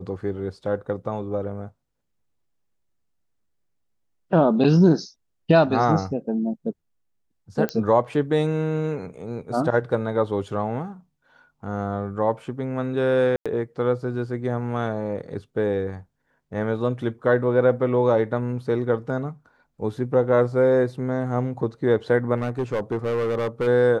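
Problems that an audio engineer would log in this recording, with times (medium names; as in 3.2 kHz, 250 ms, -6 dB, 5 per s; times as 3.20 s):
7.69 s: pop -12 dBFS
13.36–13.46 s: dropout 96 ms
22.36–23.68 s: clipped -20 dBFS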